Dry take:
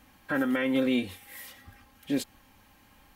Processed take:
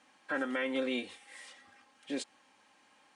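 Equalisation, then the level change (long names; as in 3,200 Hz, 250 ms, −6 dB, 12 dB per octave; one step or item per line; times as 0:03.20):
high-pass filter 360 Hz 12 dB per octave
Butterworth low-pass 9,600 Hz 72 dB per octave
−3.5 dB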